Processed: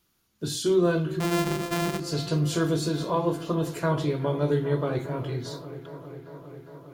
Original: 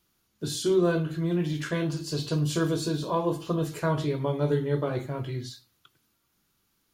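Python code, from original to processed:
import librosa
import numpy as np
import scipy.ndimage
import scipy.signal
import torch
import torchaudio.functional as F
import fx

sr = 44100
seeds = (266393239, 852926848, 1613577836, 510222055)

y = fx.sample_sort(x, sr, block=128, at=(1.2, 2.0))
y = fx.echo_wet_lowpass(y, sr, ms=405, feedback_pct=78, hz=2100.0, wet_db=-14.5)
y = y * librosa.db_to_amplitude(1.0)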